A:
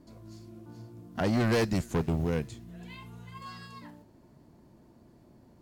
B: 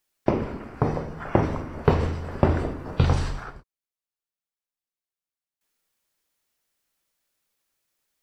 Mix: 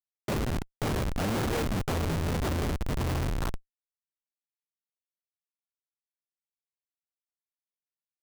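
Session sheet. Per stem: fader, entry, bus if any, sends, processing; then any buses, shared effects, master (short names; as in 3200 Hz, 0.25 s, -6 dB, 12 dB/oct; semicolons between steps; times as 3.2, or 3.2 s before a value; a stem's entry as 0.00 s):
-3.5 dB, 0.00 s, no send, reverb removal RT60 0.91 s; three-band squash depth 40%
-3.5 dB, 0.00 s, no send, de-hum 79.19 Hz, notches 7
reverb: off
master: AGC gain up to 5 dB; Schmitt trigger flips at -29.5 dBFS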